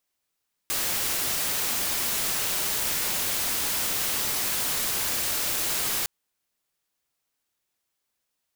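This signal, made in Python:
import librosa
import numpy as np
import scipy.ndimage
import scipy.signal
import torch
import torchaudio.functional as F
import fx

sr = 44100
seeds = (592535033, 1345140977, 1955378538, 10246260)

y = fx.noise_colour(sr, seeds[0], length_s=5.36, colour='white', level_db=-27.0)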